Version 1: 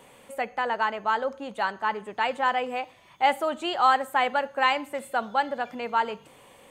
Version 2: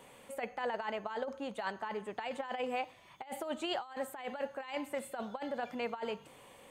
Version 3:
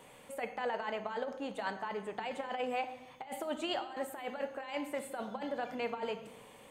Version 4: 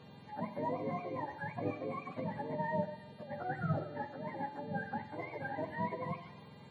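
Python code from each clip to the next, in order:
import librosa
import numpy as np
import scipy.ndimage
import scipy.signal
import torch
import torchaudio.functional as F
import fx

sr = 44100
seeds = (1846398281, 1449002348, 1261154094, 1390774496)

y1 = fx.dynamic_eq(x, sr, hz=1300.0, q=2.1, threshold_db=-35.0, ratio=4.0, max_db=-5)
y1 = fx.over_compress(y1, sr, threshold_db=-29.0, ratio=-0.5)
y1 = F.gain(torch.from_numpy(y1), -7.5).numpy()
y2 = fx.room_shoebox(y1, sr, seeds[0], volume_m3=470.0, walls='mixed', distance_m=0.48)
y3 = fx.octave_mirror(y2, sr, pivot_hz=680.0)
y3 = fx.dmg_buzz(y3, sr, base_hz=400.0, harmonics=11, level_db=-67.0, tilt_db=0, odd_only=False)
y3 = F.gain(torch.from_numpy(y3), 1.0).numpy()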